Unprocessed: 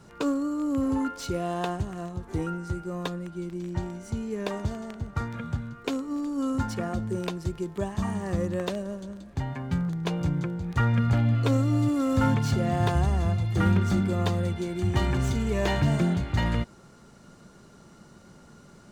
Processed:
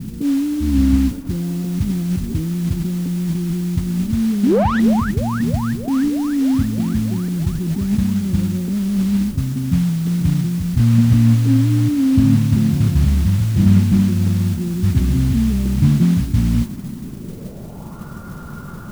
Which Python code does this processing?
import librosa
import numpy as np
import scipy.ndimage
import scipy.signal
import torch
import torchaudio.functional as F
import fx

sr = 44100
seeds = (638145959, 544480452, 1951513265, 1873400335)

p1 = fx.octave_divider(x, sr, octaves=2, level_db=1.0, at=(0.6, 1.12))
p2 = fx.bass_treble(p1, sr, bass_db=13, treble_db=14)
p3 = fx.over_compress(p2, sr, threshold_db=-31.0, ratio=-0.5)
p4 = p2 + (p3 * librosa.db_to_amplitude(0.0))
p5 = fx.filter_sweep_lowpass(p4, sr, from_hz=250.0, to_hz=1300.0, start_s=16.95, end_s=18.09, q=3.5)
p6 = fx.spec_paint(p5, sr, seeds[0], shape='rise', start_s=4.43, length_s=0.37, low_hz=210.0, high_hz=2000.0, level_db=-9.0)
p7 = fx.mod_noise(p6, sr, seeds[1], snr_db=18)
p8 = p7 + fx.echo_wet_bandpass(p7, sr, ms=311, feedback_pct=73, hz=770.0, wet_db=-11.0, dry=0)
p9 = fx.slew_limit(p8, sr, full_power_hz=190.0)
y = p9 * librosa.db_to_amplitude(-4.5)